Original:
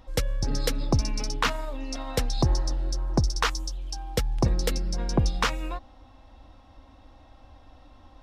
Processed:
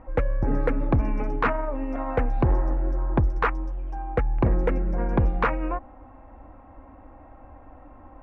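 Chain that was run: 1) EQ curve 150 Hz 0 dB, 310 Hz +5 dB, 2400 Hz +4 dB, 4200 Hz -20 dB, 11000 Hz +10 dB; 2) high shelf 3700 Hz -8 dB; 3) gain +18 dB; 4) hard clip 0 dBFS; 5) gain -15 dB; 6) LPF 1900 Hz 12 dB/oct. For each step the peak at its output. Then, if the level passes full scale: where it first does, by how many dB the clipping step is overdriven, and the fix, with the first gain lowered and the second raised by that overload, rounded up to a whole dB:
-7.0, -8.0, +10.0, 0.0, -15.0, -14.5 dBFS; step 3, 10.0 dB; step 3 +8 dB, step 5 -5 dB

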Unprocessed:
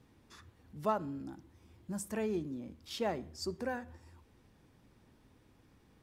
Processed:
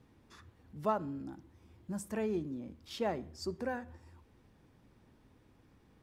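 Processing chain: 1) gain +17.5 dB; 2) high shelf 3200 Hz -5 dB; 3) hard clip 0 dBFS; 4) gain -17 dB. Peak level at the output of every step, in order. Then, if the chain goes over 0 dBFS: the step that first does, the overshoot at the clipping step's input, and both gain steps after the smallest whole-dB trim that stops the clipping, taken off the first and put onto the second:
-1.5, -2.0, -2.0, -19.0 dBFS; no overload

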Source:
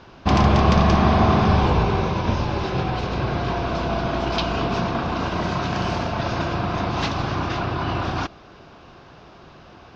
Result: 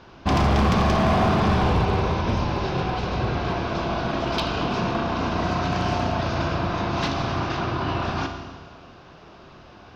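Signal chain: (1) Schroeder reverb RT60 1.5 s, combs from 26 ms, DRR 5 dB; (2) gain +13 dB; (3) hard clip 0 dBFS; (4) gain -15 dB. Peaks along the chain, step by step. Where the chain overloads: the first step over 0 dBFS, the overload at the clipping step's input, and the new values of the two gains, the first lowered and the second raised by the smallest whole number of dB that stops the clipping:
-4.0, +9.0, 0.0, -15.0 dBFS; step 2, 9.0 dB; step 2 +4 dB, step 4 -6 dB

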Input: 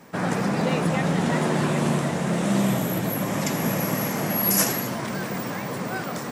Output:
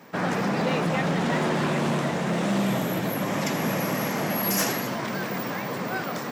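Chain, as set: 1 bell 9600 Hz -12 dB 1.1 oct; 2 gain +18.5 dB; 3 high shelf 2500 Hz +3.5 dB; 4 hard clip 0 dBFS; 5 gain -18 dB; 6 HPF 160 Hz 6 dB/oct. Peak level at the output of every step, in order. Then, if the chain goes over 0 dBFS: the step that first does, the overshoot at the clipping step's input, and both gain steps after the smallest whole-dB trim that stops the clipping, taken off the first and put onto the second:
-11.0, +7.5, +8.5, 0.0, -18.0, -14.5 dBFS; step 2, 8.5 dB; step 2 +9.5 dB, step 5 -9 dB

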